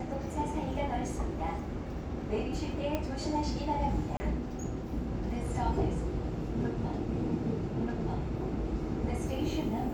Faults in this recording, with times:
2.95 s: pop -18 dBFS
4.17–4.20 s: dropout 30 ms

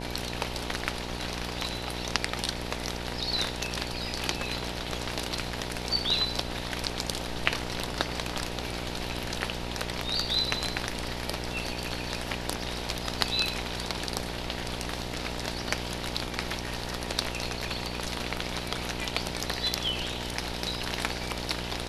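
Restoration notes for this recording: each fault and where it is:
buzz 60 Hz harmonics 16 -37 dBFS

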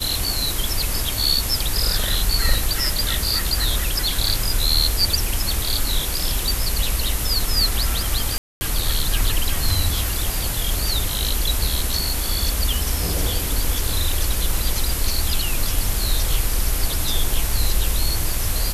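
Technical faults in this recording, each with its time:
8.38–8.61 s: dropout 230 ms

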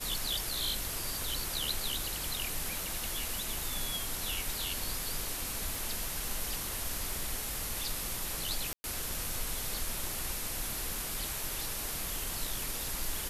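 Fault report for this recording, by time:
5.75 s: pop
8.73–8.84 s: dropout 110 ms

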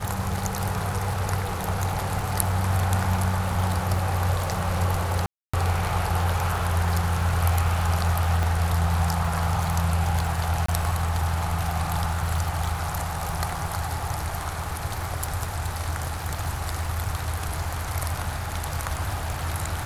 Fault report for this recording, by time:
crackle 90 per s -30 dBFS
5.26–5.54 s: dropout 275 ms
8.43 s: pop
10.66–10.68 s: dropout 24 ms

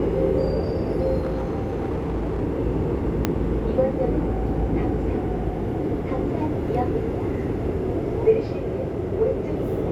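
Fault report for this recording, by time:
1.20–2.42 s: clipped -22 dBFS
3.25 s: pop -6 dBFS

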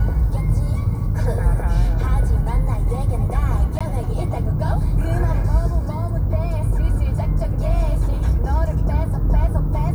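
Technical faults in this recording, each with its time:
3.79–3.81 s: dropout 16 ms

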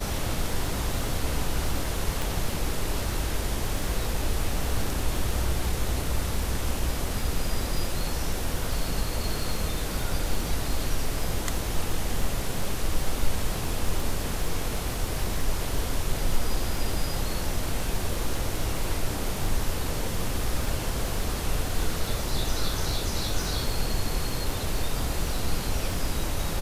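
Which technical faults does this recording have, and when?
crackle 37 per s -31 dBFS
2.22 s: pop

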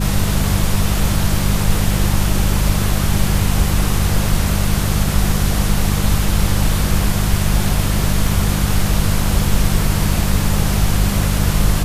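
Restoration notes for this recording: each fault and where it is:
hum 50 Hz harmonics 4 -19 dBFS

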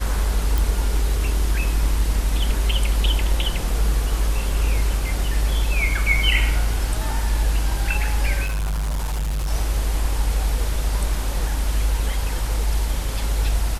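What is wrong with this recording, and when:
0.58 s: pop
8.43–9.51 s: clipped -20.5 dBFS

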